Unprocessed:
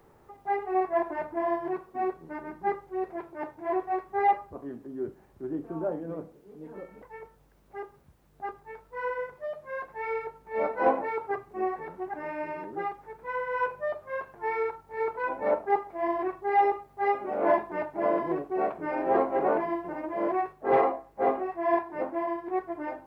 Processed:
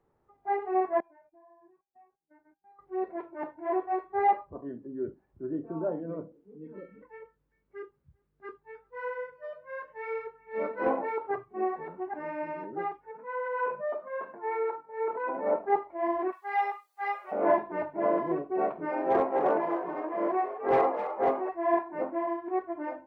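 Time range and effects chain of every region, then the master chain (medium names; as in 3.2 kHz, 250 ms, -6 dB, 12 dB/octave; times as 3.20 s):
1.00–2.79 s: gate -42 dBFS, range -17 dB + compression, threshold -34 dBFS + feedback comb 800 Hz, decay 0.42 s, mix 90%
6.58–10.91 s: peaking EQ 750 Hz -9.5 dB 0.72 oct + delay 393 ms -22.5 dB
13.11–15.56 s: high-pass 170 Hz 24 dB/octave + treble shelf 2.9 kHz -10 dB + transient shaper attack -2 dB, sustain +7 dB
16.32–17.32 s: high-pass 1 kHz + treble shelf 3.1 kHz +10.5 dB
18.85–21.49 s: tone controls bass -4 dB, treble +2 dB + hard clipper -18 dBFS + frequency-shifting echo 258 ms, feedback 47%, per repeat +70 Hz, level -10 dB
whole clip: spectral noise reduction 14 dB; treble shelf 3.3 kHz -12 dB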